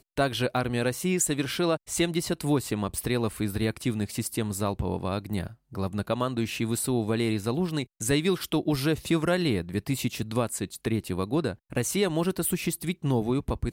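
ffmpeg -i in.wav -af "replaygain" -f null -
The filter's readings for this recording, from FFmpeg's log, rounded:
track_gain = +8.3 dB
track_peak = 0.163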